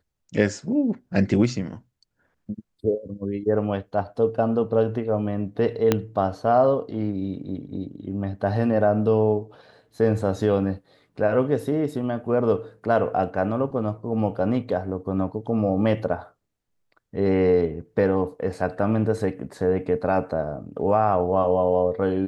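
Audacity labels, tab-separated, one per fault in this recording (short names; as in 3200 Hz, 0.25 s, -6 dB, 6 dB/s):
5.920000	5.920000	pop -5 dBFS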